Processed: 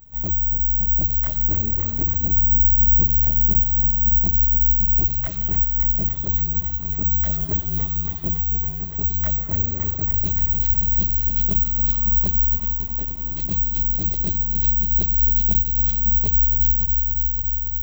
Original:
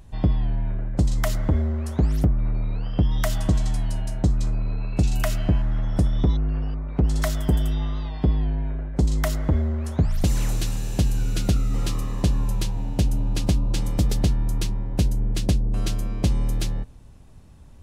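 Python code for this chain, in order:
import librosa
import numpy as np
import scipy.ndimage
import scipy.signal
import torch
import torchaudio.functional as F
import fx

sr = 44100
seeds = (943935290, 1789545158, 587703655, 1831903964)

y = fx.tilt_shelf(x, sr, db=6.0, hz=680.0, at=(2.28, 3.44))
y = fx.comb(y, sr, ms=5.4, depth=0.75, at=(14.11, 14.81))
y = fx.chorus_voices(y, sr, voices=6, hz=1.1, base_ms=23, depth_ms=3.1, mix_pct=60)
y = 10.0 ** (-15.0 / 20.0) * np.tanh(y / 10.0 ** (-15.0 / 20.0))
y = fx.echo_feedback(y, sr, ms=563, feedback_pct=49, wet_db=-12)
y = (np.kron(scipy.signal.resample_poly(y, 1, 2), np.eye(2)[0]) * 2)[:len(y)]
y = fx.bandpass_edges(y, sr, low_hz=350.0, high_hz=2400.0, at=(12.56, 13.32))
y = fx.echo_crushed(y, sr, ms=281, feedback_pct=80, bits=7, wet_db=-9.0)
y = F.gain(torch.from_numpy(y), -4.0).numpy()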